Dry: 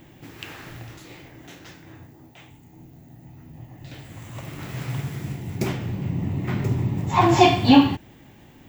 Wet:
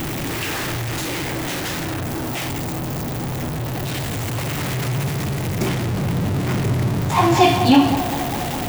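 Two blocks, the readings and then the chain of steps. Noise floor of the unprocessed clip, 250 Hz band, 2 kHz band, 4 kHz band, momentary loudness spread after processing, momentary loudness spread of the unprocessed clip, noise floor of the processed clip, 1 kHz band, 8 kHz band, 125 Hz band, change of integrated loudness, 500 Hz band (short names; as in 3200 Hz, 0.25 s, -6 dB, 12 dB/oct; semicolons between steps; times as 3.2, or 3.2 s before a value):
-50 dBFS, +2.5 dB, +6.5 dB, +4.5 dB, 11 LU, 25 LU, -26 dBFS, +3.0 dB, +12.5 dB, +5.5 dB, +0.5 dB, +3.5 dB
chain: zero-crossing step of -19 dBFS; narrowing echo 0.2 s, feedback 80%, band-pass 660 Hz, level -9 dB; gain -1 dB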